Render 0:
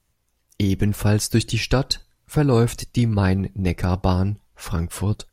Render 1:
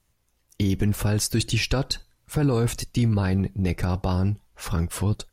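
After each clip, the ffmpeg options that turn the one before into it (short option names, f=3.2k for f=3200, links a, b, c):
-af "alimiter=limit=-13dB:level=0:latency=1:release=13"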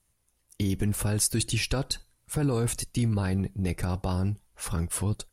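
-af "equalizer=f=9.9k:w=1.9:g=11,volume=-4.5dB"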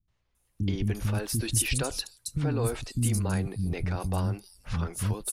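-filter_complex "[0:a]acrossover=split=270|5200[a][b][c];[b]adelay=80[d];[c]adelay=350[e];[a][d][e]amix=inputs=3:normalize=0"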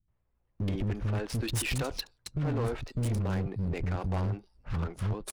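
-af "adynamicsmooth=sensitivity=7.5:basefreq=1.5k,volume=26.5dB,asoftclip=hard,volume=-26.5dB"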